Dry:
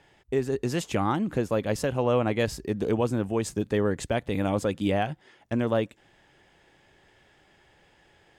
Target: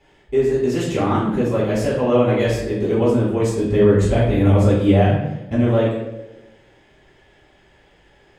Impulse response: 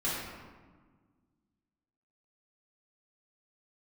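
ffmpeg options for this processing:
-filter_complex "[0:a]asettb=1/sr,asplit=3[a][b][c];[a]atrim=end=3.624[d];[b]atrim=start=3.62:end=5.56,asetpts=PTS-STARTPTS,afade=t=in:d=0.004:c=qsin,afade=t=out:st=1.936:d=0.004:c=qsin,lowshelf=f=190:g=10.5[e];[c]atrim=start=5.556[f];[d][e]acrossfade=d=0.004:c1=hsin:c2=qsin[g];[g][f]acrossfade=d=0.004:c1=qsin:c2=hsin[h];[1:a]atrim=start_sample=2205,asetrate=79380,aresample=44100[i];[h][i]afir=irnorm=-1:irlink=0,volume=2.5dB"

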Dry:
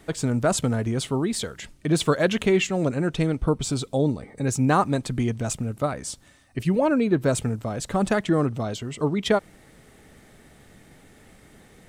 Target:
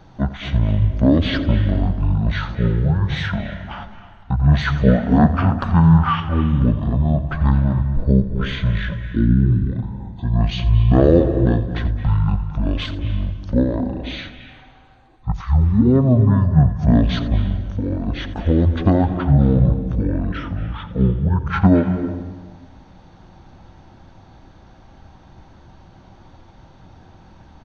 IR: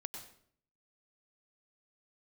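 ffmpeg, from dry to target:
-filter_complex "[0:a]asplit=2[a][b];[1:a]atrim=start_sample=2205,lowpass=5k[c];[b][c]afir=irnorm=-1:irlink=0,volume=4.5dB[d];[a][d]amix=inputs=2:normalize=0,asetrate=18963,aresample=44100,asplit=2[e][f];[f]aecho=0:1:86:0.168[g];[e][g]amix=inputs=2:normalize=0"

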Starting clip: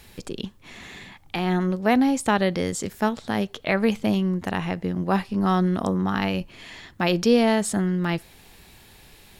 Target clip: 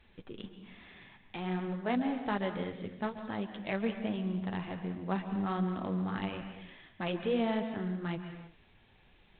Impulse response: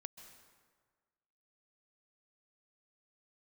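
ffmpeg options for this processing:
-filter_complex "[0:a]flanger=delay=2.9:depth=7.4:regen=-41:speed=1.2:shape=triangular[a];[1:a]atrim=start_sample=2205,afade=t=out:st=0.42:d=0.01,atrim=end_sample=18963[b];[a][b]afir=irnorm=-1:irlink=0,volume=-3dB" -ar 8000 -c:a adpcm_ima_wav

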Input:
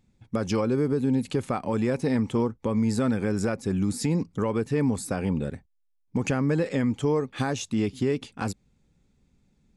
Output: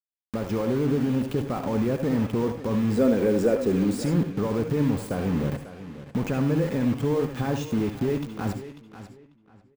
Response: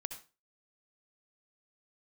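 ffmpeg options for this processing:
-filter_complex "[0:a]dynaudnorm=f=320:g=5:m=7dB,alimiter=limit=-14.5dB:level=0:latency=1:release=11,asettb=1/sr,asplit=3[a][b][c];[a]atrim=end=2.974[d];[b]atrim=start=2.97:end=4.04,asetpts=PTS-STARTPTS,afade=t=in:d=0.004:c=qsin,afade=t=out:st=1.066:d=0.004:c=qsin,equalizer=f=125:t=o:w=1:g=-11,equalizer=f=250:t=o:w=1:g=4,equalizer=f=500:t=o:w=1:g=10,equalizer=f=1k:t=o:w=1:g=-4,equalizer=f=2k:t=o:w=1:g=5,equalizer=f=4k:t=o:w=1:g=4,equalizer=f=8k:t=o:w=1:g=5[e];[c]atrim=start=4.036[f];[d][e]acrossfade=d=0.004:c1=hsin:c2=qsin[g];[g][f]acrossfade=d=0.004:c1=qsin:c2=hsin,acrusher=bits=4:mix=0:aa=0.000001,asplit=2[h][i];[i]adelay=543,lowpass=f=2.1k:p=1,volume=-15dB,asplit=2[j][k];[k]adelay=543,lowpass=f=2.1k:p=1,volume=0.27,asplit=2[l][m];[m]adelay=543,lowpass=f=2.1k:p=1,volume=0.27[n];[h][j][l][n]amix=inputs=4:normalize=0,deesser=0.95[o];[1:a]atrim=start_sample=2205,afade=t=out:st=0.15:d=0.01,atrim=end_sample=7056[p];[o][p]afir=irnorm=-1:irlink=0"

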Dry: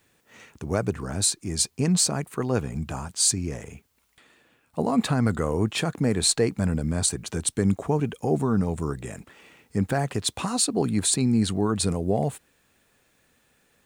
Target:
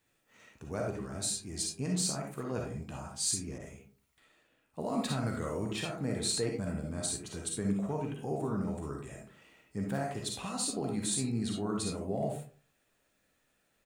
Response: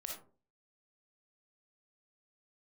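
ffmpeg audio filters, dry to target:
-filter_complex "[0:a]asplit=2[a][b];[b]adelay=15,volume=-12dB[c];[a][c]amix=inputs=2:normalize=0[d];[1:a]atrim=start_sample=2205[e];[d][e]afir=irnorm=-1:irlink=0,asettb=1/sr,asplit=3[f][g][h];[f]atrim=end=3.584[i];[g]atrim=start=3.58:end=5.76,asetpts=PTS-STARTPTS,afade=t=in:d=0.004:c=qsin,afade=t=out:st=2.176:d=0.004:c=qsin,adynamicequalizer=threshold=0.00501:dfrequency=2300:dqfactor=0.7:tfrequency=2300:tqfactor=0.7:attack=5:release=100:ratio=0.375:range=2:mode=boostabove:tftype=highshelf[j];[h]atrim=start=5.756[k];[i][j]acrossfade=d=0.004:c1=hsin:c2=qsin[l];[l][k]acrossfade=d=0.004:c1=qsin:c2=hsin,volume=-7.5dB"

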